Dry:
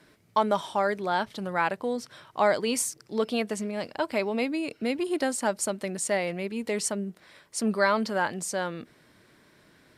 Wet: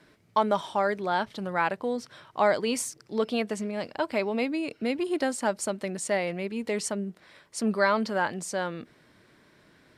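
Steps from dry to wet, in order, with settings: high shelf 8400 Hz -8 dB

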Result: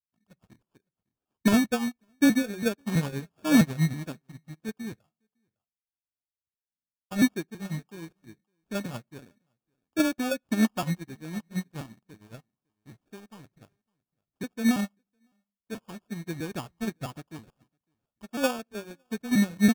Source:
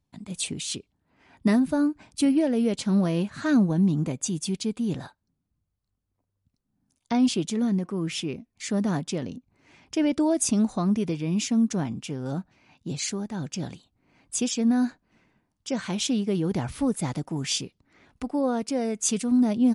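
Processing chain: trilling pitch shifter -3.5 st, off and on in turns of 0.328 s; LPF 3000 Hz 12 dB/oct; in parallel at -11 dB: bit-crush 5-bit; on the sum: LFO low-pass saw up 6.4 Hz 670–2100 Hz; sample-and-hold 22×; echo 0.557 s -18 dB; on a send at -17 dB: reverb RT60 0.40 s, pre-delay 3 ms; on the sum: upward expander 2.5:1, over -37 dBFS

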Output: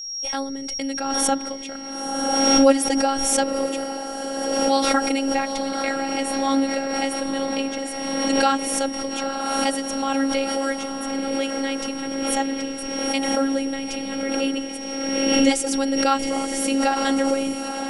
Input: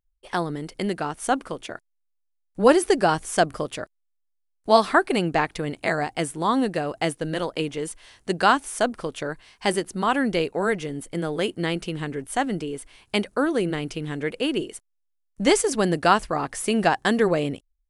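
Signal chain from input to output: bell 1100 Hz -10.5 dB 0.24 oct; notch 1700 Hz, Q 11; on a send: diffused feedback echo 0.924 s, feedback 62%, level -8 dB; on the sum: robotiser 273 Hz; whine 5600 Hz -39 dBFS; backwards sustainer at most 27 dB/s; gain +1.5 dB

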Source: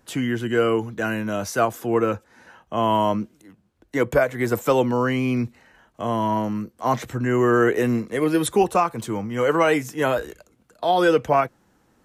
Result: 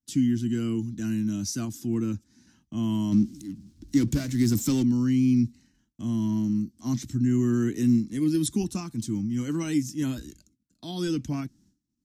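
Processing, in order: 3.12–4.83 power-law curve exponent 0.7; expander -48 dBFS; EQ curve 150 Hz 0 dB, 290 Hz +3 dB, 480 Hz -28 dB, 1300 Hz -22 dB, 2700 Hz -13 dB, 5400 Hz +3 dB, 12000 Hz -7 dB

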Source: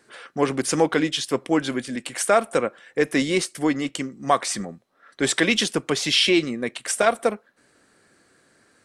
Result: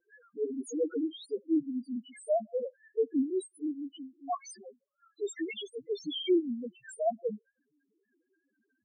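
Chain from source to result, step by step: 3.3–5.77 HPF 330 Hz 24 dB/oct; loudest bins only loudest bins 1; rotary speaker horn 5.5 Hz

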